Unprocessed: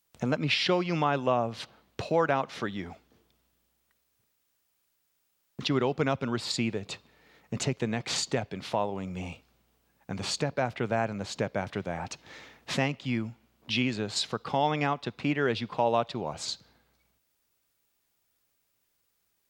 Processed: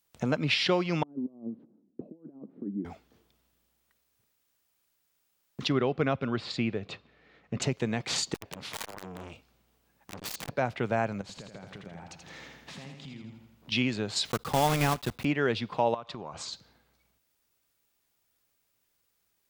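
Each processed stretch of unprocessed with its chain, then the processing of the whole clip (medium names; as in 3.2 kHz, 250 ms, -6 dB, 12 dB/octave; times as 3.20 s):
1.03–2.85 s: compressor with a negative ratio -32 dBFS, ratio -0.5 + Butterworth band-pass 260 Hz, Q 1.8
5.72–7.62 s: low-pass 3.5 kHz + band-stop 910 Hz, Q 7.6
8.34–10.49 s: dynamic bell 940 Hz, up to +3 dB, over -37 dBFS, Q 1.1 + integer overflow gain 27 dB + transformer saturation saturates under 900 Hz
11.21–13.72 s: peaking EQ 170 Hz +7 dB 0.64 oct + compression 10:1, threshold -42 dBFS + feedback delay 82 ms, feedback 52%, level -5.5 dB
14.25–15.25 s: block-companded coder 3-bit + bass shelf 120 Hz +9.5 dB
15.94–16.53 s: low-pass 8.8 kHz 24 dB/octave + peaking EQ 1.1 kHz +9.5 dB 0.38 oct + compression 8:1, threshold -35 dBFS
whole clip: none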